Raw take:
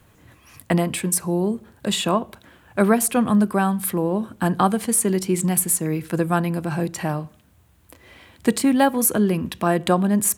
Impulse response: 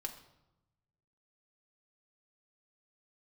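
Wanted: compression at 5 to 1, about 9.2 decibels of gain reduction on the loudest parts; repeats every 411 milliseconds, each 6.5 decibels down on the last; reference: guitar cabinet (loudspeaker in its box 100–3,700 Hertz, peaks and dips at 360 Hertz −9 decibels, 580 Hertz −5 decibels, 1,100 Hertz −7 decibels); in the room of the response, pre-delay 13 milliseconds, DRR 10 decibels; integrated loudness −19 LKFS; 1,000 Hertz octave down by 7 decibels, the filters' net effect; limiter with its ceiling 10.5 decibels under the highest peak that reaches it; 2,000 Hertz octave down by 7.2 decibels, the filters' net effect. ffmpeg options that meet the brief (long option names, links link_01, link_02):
-filter_complex "[0:a]equalizer=frequency=1000:width_type=o:gain=-4.5,equalizer=frequency=2000:width_type=o:gain=-7,acompressor=threshold=-24dB:ratio=5,alimiter=limit=-20.5dB:level=0:latency=1,aecho=1:1:411|822|1233|1644|2055|2466:0.473|0.222|0.105|0.0491|0.0231|0.0109,asplit=2[link_01][link_02];[1:a]atrim=start_sample=2205,adelay=13[link_03];[link_02][link_03]afir=irnorm=-1:irlink=0,volume=-8.5dB[link_04];[link_01][link_04]amix=inputs=2:normalize=0,highpass=100,equalizer=frequency=360:width_type=q:width=4:gain=-9,equalizer=frequency=580:width_type=q:width=4:gain=-5,equalizer=frequency=1100:width_type=q:width=4:gain=-7,lowpass=frequency=3700:width=0.5412,lowpass=frequency=3700:width=1.3066,volume=13dB"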